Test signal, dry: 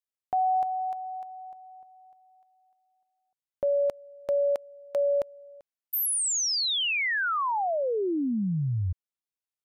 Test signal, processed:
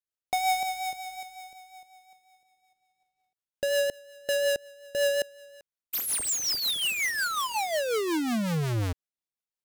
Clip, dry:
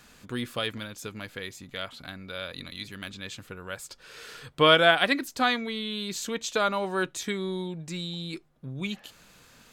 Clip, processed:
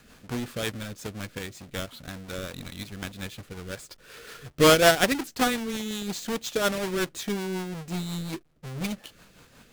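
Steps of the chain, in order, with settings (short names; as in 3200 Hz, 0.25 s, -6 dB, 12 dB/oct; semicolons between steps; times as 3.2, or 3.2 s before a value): half-waves squared off; rotary speaker horn 5.5 Hz; gain -1.5 dB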